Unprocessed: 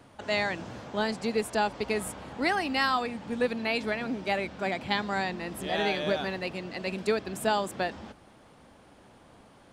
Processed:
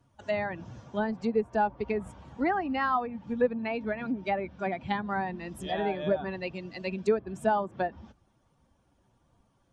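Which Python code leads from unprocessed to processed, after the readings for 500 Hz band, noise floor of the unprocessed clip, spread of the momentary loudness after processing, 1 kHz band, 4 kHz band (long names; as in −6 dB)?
+0.5 dB, −56 dBFS, 8 LU, +0.5 dB, −11.5 dB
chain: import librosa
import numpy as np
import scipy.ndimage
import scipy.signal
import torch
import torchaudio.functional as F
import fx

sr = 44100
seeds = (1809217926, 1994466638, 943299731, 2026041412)

y = fx.bin_expand(x, sr, power=1.5)
y = fx.env_lowpass_down(y, sr, base_hz=1300.0, full_db=-28.5)
y = y * 10.0 ** (3.5 / 20.0)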